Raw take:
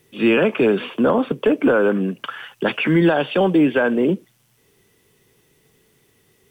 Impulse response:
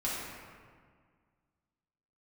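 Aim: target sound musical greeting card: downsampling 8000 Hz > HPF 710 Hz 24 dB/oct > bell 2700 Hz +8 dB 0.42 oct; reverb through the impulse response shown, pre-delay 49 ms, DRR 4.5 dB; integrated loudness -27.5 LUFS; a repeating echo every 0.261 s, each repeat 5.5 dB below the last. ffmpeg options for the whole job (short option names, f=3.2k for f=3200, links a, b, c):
-filter_complex "[0:a]aecho=1:1:261|522|783|1044|1305|1566|1827:0.531|0.281|0.149|0.079|0.0419|0.0222|0.0118,asplit=2[a][b];[1:a]atrim=start_sample=2205,adelay=49[c];[b][c]afir=irnorm=-1:irlink=0,volume=-11dB[d];[a][d]amix=inputs=2:normalize=0,aresample=8000,aresample=44100,highpass=f=710:w=0.5412,highpass=f=710:w=1.3066,equalizer=f=2.7k:t=o:w=0.42:g=8,volume=-7dB"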